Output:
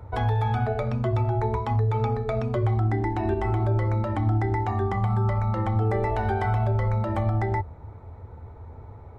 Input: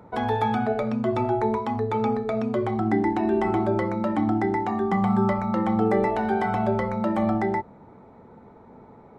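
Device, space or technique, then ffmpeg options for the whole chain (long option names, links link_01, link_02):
car stereo with a boomy subwoofer: -af "lowshelf=frequency=130:width_type=q:width=3:gain=14,alimiter=limit=-16dB:level=0:latency=1:release=138"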